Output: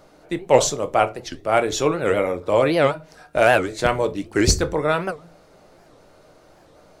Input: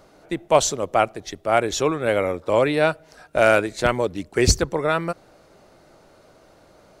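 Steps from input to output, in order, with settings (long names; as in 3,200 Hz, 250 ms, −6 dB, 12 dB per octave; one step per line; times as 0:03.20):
rectangular room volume 120 cubic metres, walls furnished, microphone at 0.49 metres
wow of a warped record 78 rpm, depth 250 cents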